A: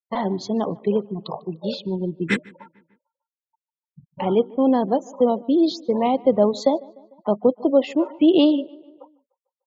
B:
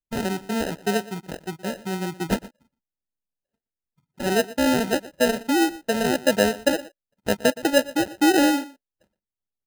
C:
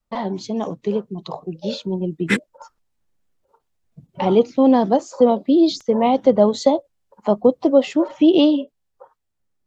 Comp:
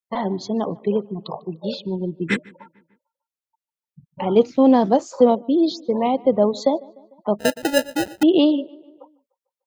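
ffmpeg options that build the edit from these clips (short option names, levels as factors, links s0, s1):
-filter_complex "[0:a]asplit=3[s0][s1][s2];[s0]atrim=end=4.362[s3];[2:a]atrim=start=4.358:end=5.352[s4];[s1]atrim=start=5.348:end=7.392[s5];[1:a]atrim=start=7.388:end=8.232[s6];[s2]atrim=start=8.228[s7];[s3][s4]acrossfade=d=0.004:c1=hsin:c2=hsin[s8];[s8][s5]acrossfade=d=0.004:c1=hsin:c2=hsin[s9];[s9][s6]acrossfade=d=0.004:c1=hsin:c2=hsin[s10];[s10][s7]acrossfade=d=0.004:c1=hsin:c2=hsin"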